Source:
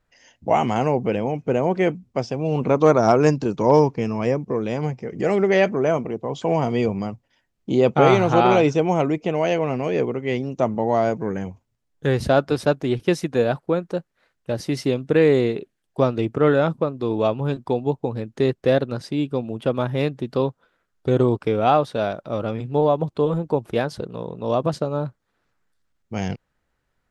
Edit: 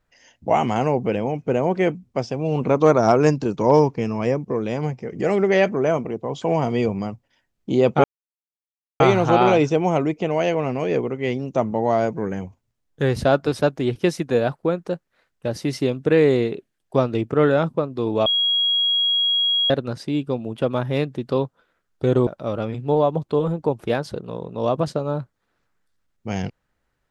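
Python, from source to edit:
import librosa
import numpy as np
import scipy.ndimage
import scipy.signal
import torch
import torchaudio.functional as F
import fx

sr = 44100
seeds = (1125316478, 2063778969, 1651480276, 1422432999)

y = fx.edit(x, sr, fx.insert_silence(at_s=8.04, length_s=0.96),
    fx.bleep(start_s=17.3, length_s=1.44, hz=3300.0, db=-16.5),
    fx.cut(start_s=21.31, length_s=0.82), tone=tone)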